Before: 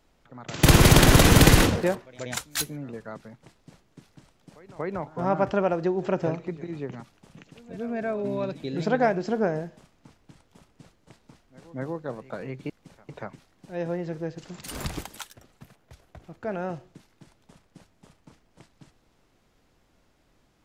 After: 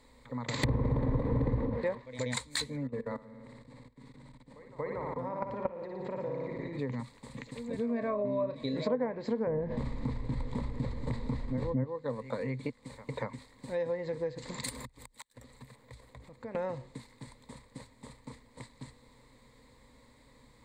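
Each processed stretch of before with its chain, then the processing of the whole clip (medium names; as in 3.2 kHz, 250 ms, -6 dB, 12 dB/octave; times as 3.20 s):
2.87–6.79 s: low-pass 2.4 kHz 6 dB/octave + flutter echo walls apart 10 m, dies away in 0.82 s + level held to a coarse grid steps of 19 dB
7.89–8.95 s: doubling 34 ms -11.5 dB + small resonant body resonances 620/1100 Hz, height 17 dB, ringing for 95 ms
9.47–11.84 s: tilt EQ -3 dB/octave + level flattener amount 70%
14.69–16.55 s: compression 2:1, threshold -58 dBFS + inverted gate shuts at -37 dBFS, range -31 dB
whole clip: low-pass that closes with the level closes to 710 Hz, closed at -14.5 dBFS; rippled EQ curve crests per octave 0.99, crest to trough 14 dB; compression 3:1, threshold -37 dBFS; trim +3.5 dB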